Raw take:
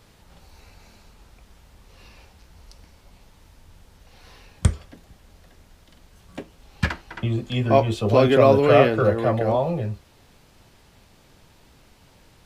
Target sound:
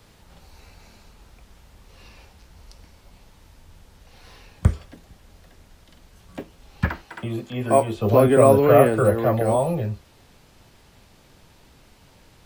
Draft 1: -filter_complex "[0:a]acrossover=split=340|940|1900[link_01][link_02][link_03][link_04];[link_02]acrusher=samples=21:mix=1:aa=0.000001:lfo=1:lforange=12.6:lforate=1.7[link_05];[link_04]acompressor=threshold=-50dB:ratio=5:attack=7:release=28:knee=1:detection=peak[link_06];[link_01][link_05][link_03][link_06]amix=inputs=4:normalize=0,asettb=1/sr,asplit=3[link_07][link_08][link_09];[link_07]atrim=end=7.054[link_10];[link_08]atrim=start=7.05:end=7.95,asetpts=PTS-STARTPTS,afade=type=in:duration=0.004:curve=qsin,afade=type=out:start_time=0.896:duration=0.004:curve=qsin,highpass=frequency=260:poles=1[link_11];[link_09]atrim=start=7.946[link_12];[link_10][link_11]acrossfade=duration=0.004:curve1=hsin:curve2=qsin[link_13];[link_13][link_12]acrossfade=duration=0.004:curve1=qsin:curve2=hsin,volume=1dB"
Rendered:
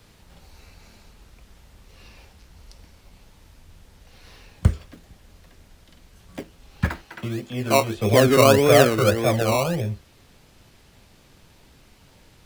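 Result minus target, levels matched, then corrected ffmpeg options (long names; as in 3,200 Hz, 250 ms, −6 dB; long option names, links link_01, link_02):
sample-and-hold swept by an LFO: distortion +18 dB
-filter_complex "[0:a]acrossover=split=340|940|1900[link_01][link_02][link_03][link_04];[link_02]acrusher=samples=4:mix=1:aa=0.000001:lfo=1:lforange=2.4:lforate=1.7[link_05];[link_04]acompressor=threshold=-50dB:ratio=5:attack=7:release=28:knee=1:detection=peak[link_06];[link_01][link_05][link_03][link_06]amix=inputs=4:normalize=0,asettb=1/sr,asplit=3[link_07][link_08][link_09];[link_07]atrim=end=7.054[link_10];[link_08]atrim=start=7.05:end=7.95,asetpts=PTS-STARTPTS,afade=type=in:duration=0.004:curve=qsin,afade=type=out:start_time=0.896:duration=0.004:curve=qsin,highpass=frequency=260:poles=1[link_11];[link_09]atrim=start=7.946[link_12];[link_10][link_11]acrossfade=duration=0.004:curve1=hsin:curve2=qsin[link_13];[link_13][link_12]acrossfade=duration=0.004:curve1=qsin:curve2=hsin,volume=1dB"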